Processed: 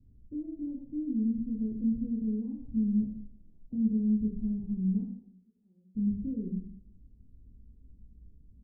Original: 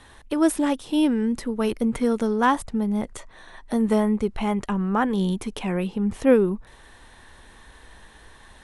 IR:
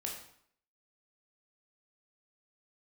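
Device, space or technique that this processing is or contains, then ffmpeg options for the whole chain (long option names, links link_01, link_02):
club heard from the street: -filter_complex "[0:a]asettb=1/sr,asplit=3[link_01][link_02][link_03];[link_01]atrim=end=5.024[link_04];[link_02]atrim=start=5.02:end=5.95,asetpts=PTS-STARTPTS,afade=type=in:duration=0.004:curve=qsin,afade=type=out:start_time=0.926:duration=0.004:curve=qsin,aderivative[link_05];[link_03]atrim=start=5.946[link_06];[link_04][link_05]acrossfade=duration=0.004:curve1=hsin:curve2=qsin[link_07];[link_07][link_06]acrossfade=duration=0.004:curve1=qsin:curve2=hsin,alimiter=limit=-15dB:level=0:latency=1:release=280,lowpass=frequency=230:width=0.5412,lowpass=frequency=230:width=1.3066[link_08];[1:a]atrim=start_sample=2205[link_09];[link_08][link_09]afir=irnorm=-1:irlink=0,volume=-2.5dB"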